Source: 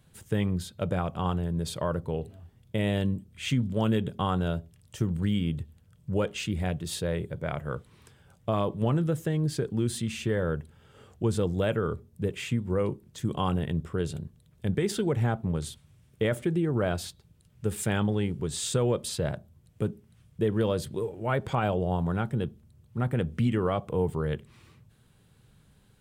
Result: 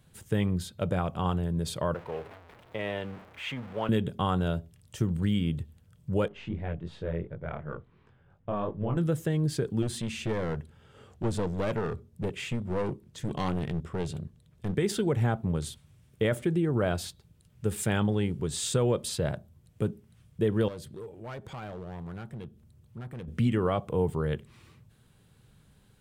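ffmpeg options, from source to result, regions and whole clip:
-filter_complex "[0:a]asettb=1/sr,asplit=3[s0][s1][s2];[s0]atrim=end=1.944[s3];[s1]atrim=start=1.94:end=3.89,asetpts=PTS-STARTPTS,afade=t=in:d=0.004:c=qsin,afade=t=out:st=1.946:d=0.004:c=qsin,aeval=exprs='val(0)+0.5*0.0158*sgn(val(0))':c=same,acrossover=split=440 3000:gain=0.178 1 0.126[s4][s5][s6];[s4][s5][s6]amix=inputs=3:normalize=0,agate=range=0.0224:threshold=0.00398:ratio=3:release=100:detection=peak[s7];[s2]atrim=start=3.886[s8];[s3][s7]acrossfade=d=0.004:c1=hsin:c2=qsin[s9];[s9][s8]acrossfade=d=0.004:c1=qsin:c2=hsin,asettb=1/sr,asplit=3[s10][s11][s12];[s10]atrim=end=6.284[s13];[s11]atrim=start=6.28:end=8.97,asetpts=PTS-STARTPTS,afade=t=in:d=0.004:c=qsin,afade=t=out:st=2.686:d=0.004:c=qsin,aeval=exprs='if(lt(val(0),0),0.708*val(0),val(0))':c=same,lowpass=2000,flanger=delay=19:depth=5:speed=2.8[s14];[s12]atrim=start=8.966[s15];[s13][s14]acrossfade=d=0.004:c1=hsin:c2=qsin[s16];[s16][s15]acrossfade=d=0.004:c1=qsin:c2=hsin,asettb=1/sr,asplit=3[s17][s18][s19];[s17]atrim=end=9.824[s20];[s18]atrim=start=9.82:end=14.77,asetpts=PTS-STARTPTS,afade=t=in:d=0.004:c=qsin,afade=t=out:st=4.946:d=0.004:c=qsin,aeval=exprs='clip(val(0),-1,0.0299)':c=same,highshelf=f=11000:g=-9[s21];[s19]atrim=start=14.766[s22];[s20][s21]acrossfade=d=0.004:c1=hsin:c2=qsin[s23];[s23][s22]acrossfade=d=0.004:c1=qsin:c2=hsin,asettb=1/sr,asplit=3[s24][s25][s26];[s24]atrim=end=20.684[s27];[s25]atrim=start=20.68:end=23.28,asetpts=PTS-STARTPTS,afade=t=in:d=0.004:c=qsin,afade=t=out:st=2.596:d=0.004:c=qsin,acompressor=threshold=0.002:ratio=1.5:attack=3.2:release=140:knee=1:detection=peak,asoftclip=type=hard:threshold=0.0168[s28];[s26]atrim=start=23.276[s29];[s27][s28]acrossfade=d=0.004:c1=hsin:c2=qsin[s30];[s30][s29]acrossfade=d=0.004:c1=qsin:c2=hsin"

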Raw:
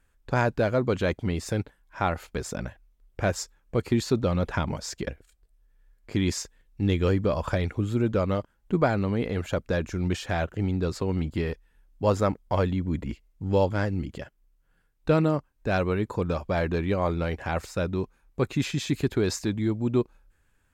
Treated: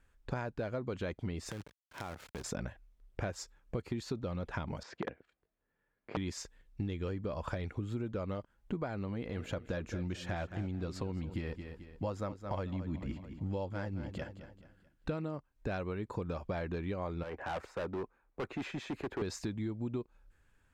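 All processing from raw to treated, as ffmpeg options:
-filter_complex "[0:a]asettb=1/sr,asplit=3[s0][s1][s2];[s0]atrim=end=1.514[s3];[s1]atrim=start=1.51:end=2.44,asetpts=PTS-STARTPTS,afade=t=in:d=0.004:c=qsin,afade=t=out:st=0.926:d=0.004:c=qsin,acrusher=bits=6:dc=4:mix=0:aa=0.000001,acompressor=threshold=0.0158:ratio=8:attack=3.2:release=140:knee=1:detection=peak,highpass=52[s4];[s2]atrim=start=2.436[s5];[s3][s4]acrossfade=d=0.004:c1=hsin:c2=qsin[s6];[s6][s5]acrossfade=d=0.004:c1=qsin:c2=hsin,asettb=1/sr,asplit=3[s7][s8][s9];[s7]atrim=end=4.834[s10];[s8]atrim=start=4.83:end=6.17,asetpts=PTS-STARTPTS,afade=t=in:d=0.004:c=qsin,afade=t=out:st=1.336:d=0.004:c=qsin,aeval=exprs='(mod(9.44*val(0)+1,2)-1)/9.44':c=same,highpass=170,lowpass=2300[s11];[s9]atrim=start=6.166[s12];[s10][s11]acrossfade=d=0.004:c1=hsin:c2=qsin[s13];[s13][s12]acrossfade=d=0.004:c1=qsin:c2=hsin,asettb=1/sr,asplit=3[s14][s15][s16];[s14]atrim=end=9.074[s17];[s15]atrim=start=9.07:end=15.16,asetpts=PTS-STARTPTS,afade=t=in:d=0.004:c=qsin,afade=t=out:st=6.086:d=0.004:c=qsin,bandreject=f=420:w=9.3,aecho=1:1:217|434|651|868:0.188|0.0735|0.0287|0.0112,atrim=end_sample=268569[s18];[s16]atrim=start=15.156[s19];[s17][s18]acrossfade=d=0.004:c1=hsin:c2=qsin[s20];[s20][s19]acrossfade=d=0.004:c1=qsin:c2=hsin,asettb=1/sr,asplit=3[s21][s22][s23];[s21]atrim=end=17.234[s24];[s22]atrim=start=17.23:end=19.22,asetpts=PTS-STARTPTS,afade=t=in:d=0.004:c=qsin,afade=t=out:st=1.986:d=0.004:c=qsin,acrossover=split=280 2100:gain=0.251 1 0.178[s25][s26][s27];[s25][s26][s27]amix=inputs=3:normalize=0,volume=33.5,asoftclip=hard,volume=0.0299[s28];[s23]atrim=start=19.216[s29];[s24][s28]acrossfade=d=0.004:c1=hsin:c2=qsin[s30];[s30][s29]acrossfade=d=0.004:c1=qsin:c2=hsin,highshelf=f=8800:g=-9.5,acompressor=threshold=0.0251:ratio=10,volume=0.841"

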